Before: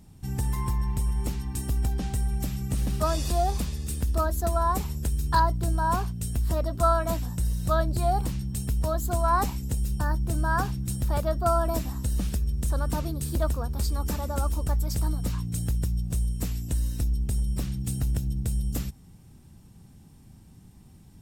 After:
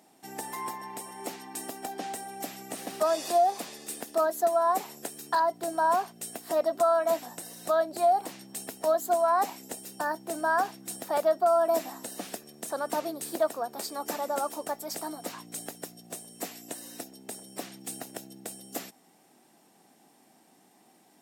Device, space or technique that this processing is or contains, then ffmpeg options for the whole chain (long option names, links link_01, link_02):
laptop speaker: -af "highpass=frequency=290:width=0.5412,highpass=frequency=290:width=1.3066,equalizer=frequency=710:width_type=o:width=0.48:gain=10,equalizer=frequency=1900:width_type=o:width=0.51:gain=4,alimiter=limit=-16dB:level=0:latency=1:release=308"